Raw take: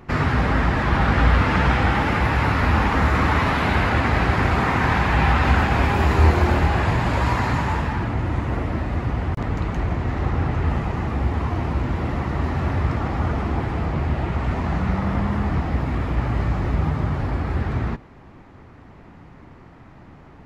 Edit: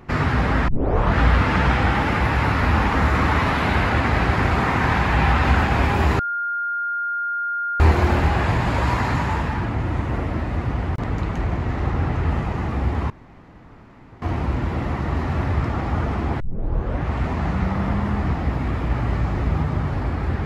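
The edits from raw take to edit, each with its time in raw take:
0:00.68: tape start 0.50 s
0:06.19: insert tone 1,410 Hz −21.5 dBFS 1.61 s
0:11.49: splice in room tone 1.12 s
0:13.67: tape start 0.71 s

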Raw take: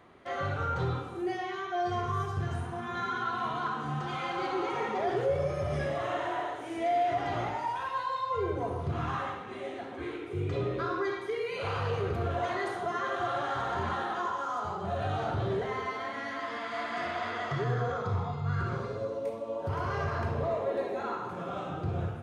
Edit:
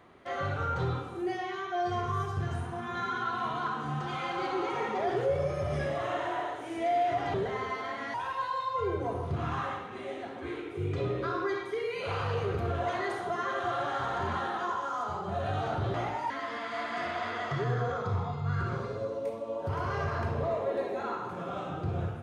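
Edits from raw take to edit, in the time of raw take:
0:07.34–0:07.70: swap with 0:15.50–0:16.30

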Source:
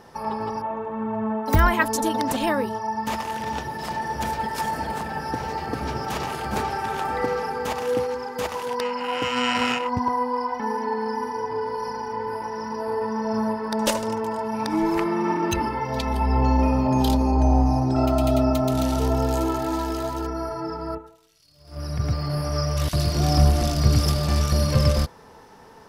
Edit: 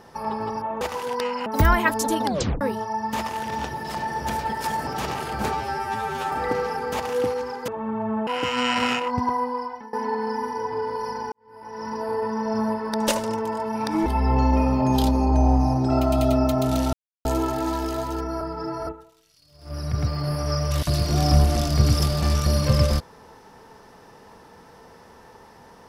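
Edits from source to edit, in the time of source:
0:00.81–0:01.40: swap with 0:08.41–0:09.06
0:02.19: tape stop 0.36 s
0:04.81–0:05.99: remove
0:06.65–0:07.04: time-stretch 2×
0:09.98–0:10.72: fade out equal-power, to −23 dB
0:12.11–0:12.67: fade in quadratic
0:14.85–0:16.12: remove
0:18.99–0:19.31: silence
0:20.47–0:20.93: reverse

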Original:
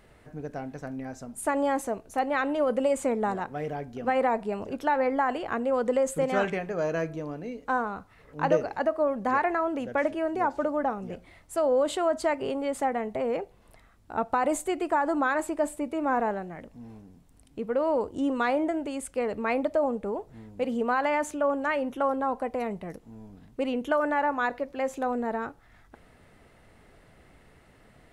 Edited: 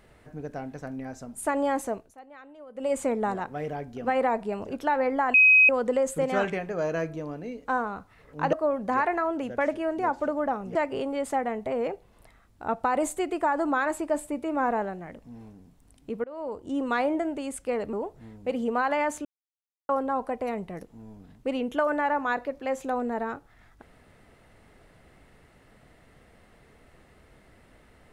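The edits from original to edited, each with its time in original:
0:01.95–0:02.94: duck −21 dB, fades 0.20 s
0:05.34–0:05.69: beep over 2,530 Hz −13 dBFS
0:08.53–0:08.90: remove
0:11.12–0:12.24: remove
0:17.73–0:18.41: fade in, from −21 dB
0:19.42–0:20.06: remove
0:21.38–0:22.02: silence

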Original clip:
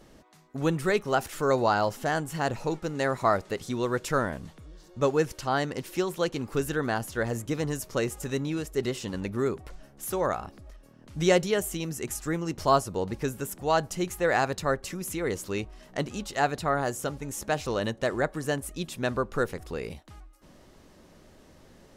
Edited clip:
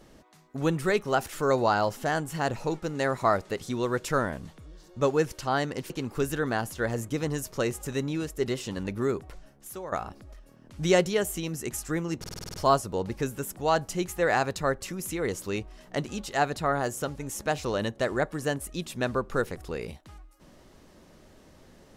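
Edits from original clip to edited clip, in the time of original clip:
0:05.90–0:06.27: remove
0:09.59–0:10.29: fade out, to −14 dB
0:12.56: stutter 0.05 s, 8 plays

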